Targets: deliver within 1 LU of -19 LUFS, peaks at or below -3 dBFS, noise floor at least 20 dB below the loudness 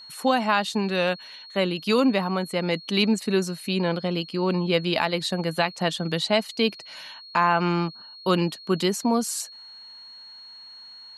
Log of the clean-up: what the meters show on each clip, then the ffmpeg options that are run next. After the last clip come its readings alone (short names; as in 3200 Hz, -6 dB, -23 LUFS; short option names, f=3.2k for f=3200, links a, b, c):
steady tone 4300 Hz; tone level -42 dBFS; loudness -24.5 LUFS; peak -7.5 dBFS; loudness target -19.0 LUFS
-> -af "bandreject=f=4.3k:w=30"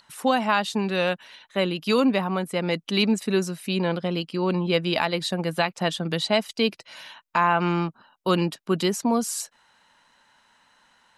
steady tone none; loudness -24.5 LUFS; peak -7.5 dBFS; loudness target -19.0 LUFS
-> -af "volume=5.5dB,alimiter=limit=-3dB:level=0:latency=1"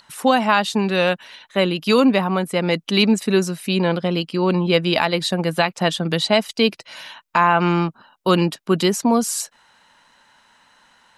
loudness -19.5 LUFS; peak -3.0 dBFS; noise floor -58 dBFS